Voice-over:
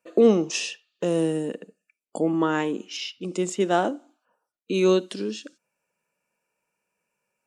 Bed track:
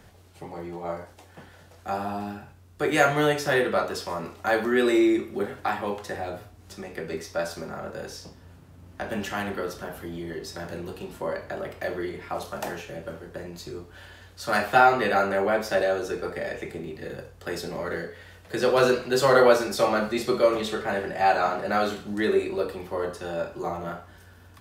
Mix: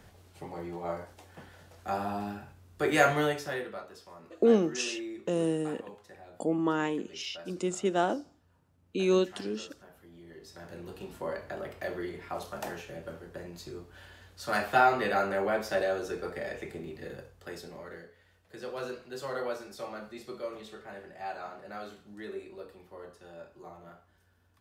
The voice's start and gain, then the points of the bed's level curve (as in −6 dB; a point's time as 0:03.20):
4.25 s, −5.5 dB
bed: 0:03.11 −3 dB
0:03.86 −19 dB
0:10.07 −19 dB
0:11.04 −5.5 dB
0:17.05 −5.5 dB
0:18.21 −17.5 dB